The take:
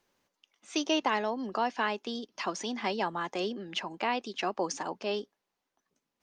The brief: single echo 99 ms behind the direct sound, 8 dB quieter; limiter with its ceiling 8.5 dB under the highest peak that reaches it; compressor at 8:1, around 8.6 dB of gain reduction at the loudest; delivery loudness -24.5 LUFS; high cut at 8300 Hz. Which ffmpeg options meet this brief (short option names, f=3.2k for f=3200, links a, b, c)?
-af "lowpass=8.3k,acompressor=threshold=-32dB:ratio=8,alimiter=level_in=4dB:limit=-24dB:level=0:latency=1,volume=-4dB,aecho=1:1:99:0.398,volume=14.5dB"